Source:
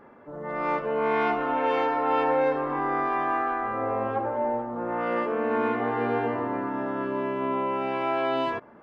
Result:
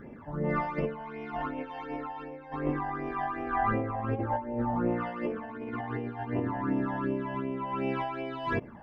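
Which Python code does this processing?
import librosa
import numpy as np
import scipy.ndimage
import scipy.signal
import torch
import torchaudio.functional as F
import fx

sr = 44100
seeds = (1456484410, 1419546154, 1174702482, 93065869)

y = fx.low_shelf(x, sr, hz=260.0, db=9.5)
y = fx.over_compress(y, sr, threshold_db=-28.0, ratio=-0.5)
y = fx.phaser_stages(y, sr, stages=12, low_hz=390.0, high_hz=1400.0, hz=2.7, feedback_pct=40)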